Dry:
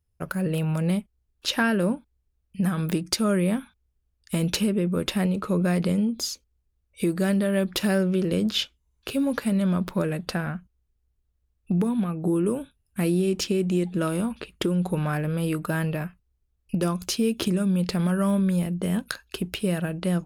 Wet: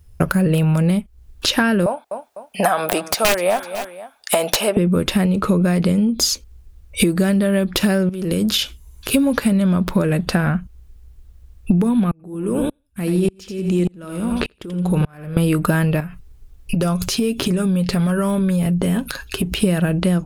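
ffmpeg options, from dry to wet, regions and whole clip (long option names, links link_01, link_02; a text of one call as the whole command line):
ffmpeg -i in.wav -filter_complex "[0:a]asettb=1/sr,asplit=3[link_01][link_02][link_03];[link_01]atrim=end=1.864[link_04];[link_02]atrim=start=1.86:end=4.77,asetpts=PTS-STARTPTS,afade=type=in:duration=0.004:curve=qsin,afade=type=out:start_time=2.906:duration=0.004:curve=qsin,highpass=frequency=700:width_type=q:width=5.4,aeval=exprs='(mod(5.62*val(0)+1,2)-1)/5.62':channel_layout=same,aecho=1:1:251|502:0.0891|0.0285,atrim=end_sample=128331[link_05];[link_03]atrim=start=4.766[link_06];[link_04][link_05]acrossfade=duration=0.004:curve1=hsin:curve2=qsin[link_07];[link_07][link_06]acrossfade=duration=0.004:curve1=qsin:curve2=hsin,asettb=1/sr,asplit=3[link_08][link_09][link_10];[link_08]atrim=end=8.094[link_11];[link_09]atrim=start=8.09:end=9.14,asetpts=PTS-STARTPTS,afade=type=in:duration=0.004:curve=qsin,afade=type=out:start_time=1.046:duration=0.004:curve=qsin,equalizer=frequency=12000:width_type=o:width=1.2:gain=11,acompressor=threshold=-36dB:ratio=8:attack=3.2:release=140:knee=1:detection=peak[link_12];[link_10]atrim=start=9.136[link_13];[link_11][link_12]acrossfade=duration=0.004:curve1=hsin:curve2=qsin[link_14];[link_14][link_13]acrossfade=duration=0.004:curve1=qsin:curve2=hsin,asettb=1/sr,asplit=3[link_15][link_16][link_17];[link_15]atrim=end=12.114[link_18];[link_16]atrim=start=12.11:end=15.37,asetpts=PTS-STARTPTS,afade=type=in:duration=0.004:curve=qsin,afade=type=out:start_time=3.256:duration=0.004:curve=qsin,aecho=1:1:84|168|252:0.316|0.0632|0.0126,atrim=end_sample=143766,acompressor=threshold=-30dB:ratio=2.5:attack=3.2:release=140:knee=1:detection=peak,aeval=exprs='val(0)*pow(10,-36*if(lt(mod(-1.7*n/s,1),2*abs(-1.7)/1000),1-mod(-1.7*n/s,1)/(2*abs(-1.7)/1000),(mod(-1.7*n/s,1)-2*abs(-1.7)/1000)/(1-2*abs(-1.7)/1000))/20)':channel_layout=same[link_19];[link_17]atrim=start=15.366[link_20];[link_18][link_19]acrossfade=duration=0.004:curve1=hsin:curve2=qsin[link_21];[link_21][link_20]acrossfade=duration=0.004:curve1=qsin:curve2=hsin,asettb=1/sr,asplit=3[link_22][link_23][link_24];[link_22]atrim=end=16.004[link_25];[link_23]atrim=start=16:end=19.52,asetpts=PTS-STARTPTS,afade=type=in:duration=0.004:curve=qsin,afade=type=out:start_time=3.516:duration=0.004:curve=qsin,aecho=1:1:7.3:0.46,atrim=end_sample=155232,acompressor=threshold=-42dB:ratio=3:attack=3.2:release=140:knee=1:detection=peak[link_26];[link_24]atrim=start=19.516[link_27];[link_25][link_26]acrossfade=duration=0.004:curve1=hsin:curve2=qsin[link_28];[link_28][link_27]acrossfade=duration=0.004:curve1=qsin:curve2=hsin,lowshelf=frequency=75:gain=9.5,acompressor=threshold=-36dB:ratio=10,alimiter=level_in=23dB:limit=-1dB:release=50:level=0:latency=1,volume=-1dB" out.wav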